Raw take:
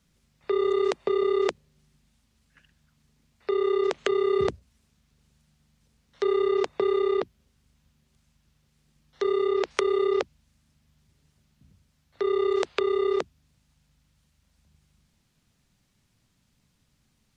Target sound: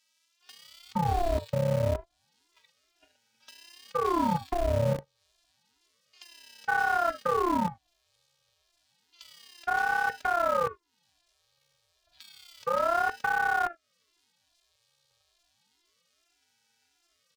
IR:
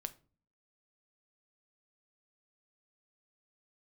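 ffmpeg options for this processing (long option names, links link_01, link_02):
-filter_complex "[1:a]atrim=start_sample=2205,afade=type=out:start_time=0.14:duration=0.01,atrim=end_sample=6615,asetrate=48510,aresample=44100[link_01];[0:a][link_01]afir=irnorm=-1:irlink=0,asplit=2[link_02][link_03];[link_03]acrusher=samples=39:mix=1:aa=0.000001,volume=-4dB[link_04];[link_02][link_04]amix=inputs=2:normalize=0,afftfilt=real='hypot(re,im)*cos(PI*b)':imag='0':win_size=512:overlap=0.75,equalizer=frequency=125:width_type=o:width=1:gain=-5,equalizer=frequency=500:width_type=o:width=1:gain=-8,equalizer=frequency=4000:width_type=o:width=1:gain=8,acrossover=split=1900[link_05][link_06];[link_05]adelay=460[link_07];[link_07][link_06]amix=inputs=2:normalize=0,acrossover=split=240|800[link_08][link_09][link_10];[link_08]acrusher=bits=6:mix=0:aa=0.000001[link_11];[link_10]acompressor=threshold=-58dB:ratio=4[link_12];[link_11][link_09][link_12]amix=inputs=3:normalize=0,aeval=exprs='val(0)*sin(2*PI*680*n/s+680*0.7/0.3*sin(2*PI*0.3*n/s))':channel_layout=same,volume=8.5dB"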